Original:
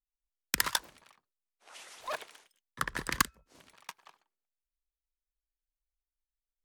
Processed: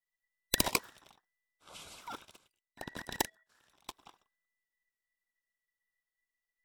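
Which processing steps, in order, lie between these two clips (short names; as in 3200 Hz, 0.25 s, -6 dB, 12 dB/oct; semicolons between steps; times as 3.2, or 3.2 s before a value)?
band inversion scrambler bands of 2000 Hz; 2–3.94 level quantiser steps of 14 dB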